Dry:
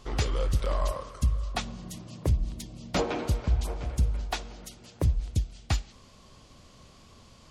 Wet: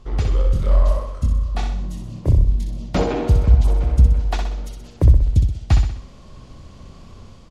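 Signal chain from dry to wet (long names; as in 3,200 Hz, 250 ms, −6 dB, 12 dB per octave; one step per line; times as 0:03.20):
spectral tilt −2 dB per octave
automatic gain control gain up to 7 dB
0:00.42–0:02.68: multi-voice chorus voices 2, 1.4 Hz, delay 24 ms, depth 3 ms
repeating echo 63 ms, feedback 48%, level −5.5 dB
level −1 dB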